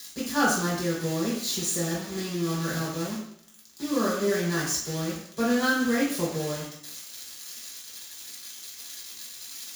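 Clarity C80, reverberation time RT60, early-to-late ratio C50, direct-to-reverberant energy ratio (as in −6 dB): 6.0 dB, 0.70 s, 3.0 dB, −7.5 dB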